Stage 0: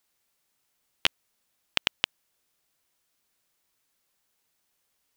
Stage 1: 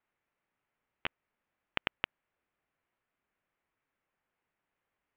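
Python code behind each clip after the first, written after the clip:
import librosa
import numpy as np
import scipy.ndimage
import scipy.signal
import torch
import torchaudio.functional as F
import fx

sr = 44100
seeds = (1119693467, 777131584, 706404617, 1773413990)

y = scipy.signal.sosfilt(scipy.signal.cheby2(4, 60, 7500.0, 'lowpass', fs=sr, output='sos'), x)
y = fx.over_compress(y, sr, threshold_db=-28.0, ratio=-0.5)
y = F.gain(torch.from_numpy(y), -3.0).numpy()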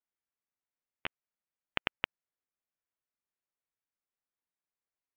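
y = fx.upward_expand(x, sr, threshold_db=-43.0, expansion=2.5)
y = F.gain(torch.from_numpy(y), 1.0).numpy()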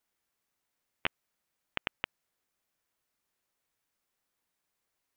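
y = fx.over_compress(x, sr, threshold_db=-38.0, ratio=-1.0)
y = F.gain(torch.from_numpy(y), 5.5).numpy()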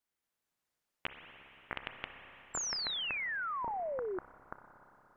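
y = fx.echo_pitch(x, sr, ms=222, semitones=-6, count=3, db_per_echo=-3.0)
y = fx.rev_spring(y, sr, rt60_s=3.7, pass_ms=(30, 58), chirp_ms=65, drr_db=5.5)
y = fx.spec_paint(y, sr, seeds[0], shape='fall', start_s=2.54, length_s=1.65, low_hz=350.0, high_hz=7500.0, level_db=-30.0)
y = F.gain(torch.from_numpy(y), -7.0).numpy()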